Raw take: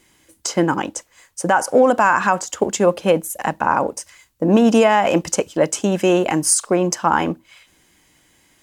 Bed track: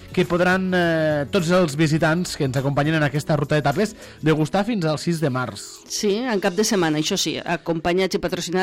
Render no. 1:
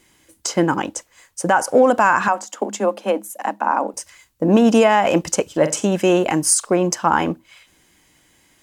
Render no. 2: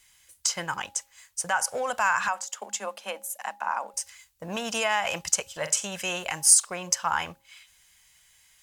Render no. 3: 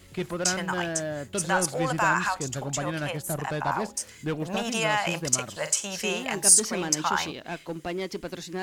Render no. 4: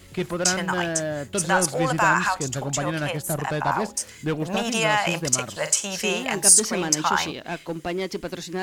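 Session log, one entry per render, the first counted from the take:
2.28–3.94 s: rippled Chebyshev high-pass 200 Hz, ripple 6 dB; 5.45–5.87 s: flutter echo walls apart 7.7 m, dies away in 0.26 s
amplifier tone stack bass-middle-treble 10-0-10; de-hum 272.4 Hz, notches 3
add bed track -12 dB
trim +4 dB; peak limiter -3 dBFS, peak gain reduction 3 dB

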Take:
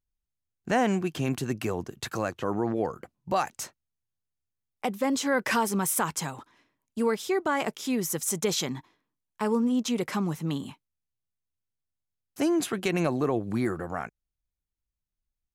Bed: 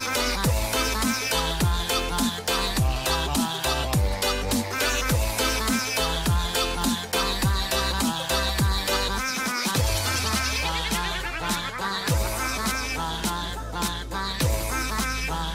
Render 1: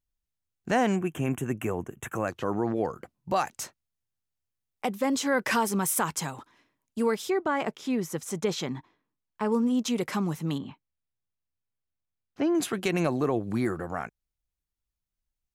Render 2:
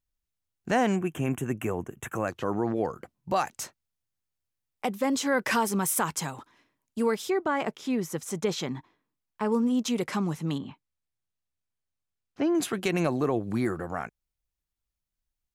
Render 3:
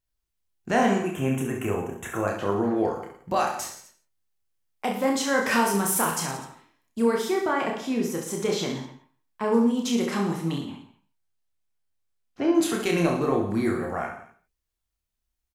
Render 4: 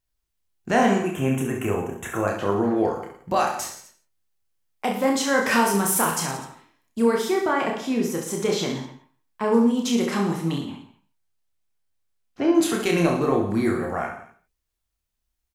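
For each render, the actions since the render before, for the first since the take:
0.96–2.28 s: Butterworth band-stop 4.5 kHz, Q 1.1; 7.30–9.52 s: low-pass 2.5 kHz 6 dB/octave; 10.58–12.55 s: distance through air 250 m
10.04–12.46 s: low-pass 11 kHz
reverse bouncing-ball echo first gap 30 ms, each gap 1.25×, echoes 5; gated-style reverb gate 190 ms falling, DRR 5.5 dB
trim +2.5 dB

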